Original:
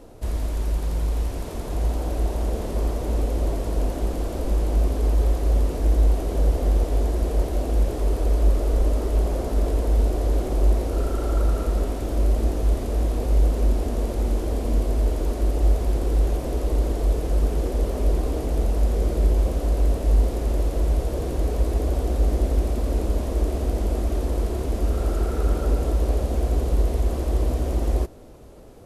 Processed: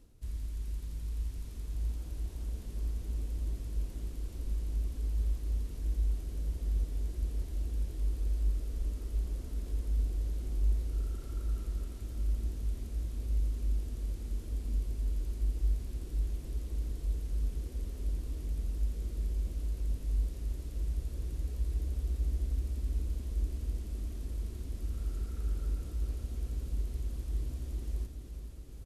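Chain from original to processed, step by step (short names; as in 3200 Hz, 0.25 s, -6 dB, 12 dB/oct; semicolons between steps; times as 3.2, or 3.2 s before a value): passive tone stack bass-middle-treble 6-0-2; reverse; upward compressor, threshold -42 dBFS; reverse; feedback echo 0.427 s, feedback 55%, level -8 dB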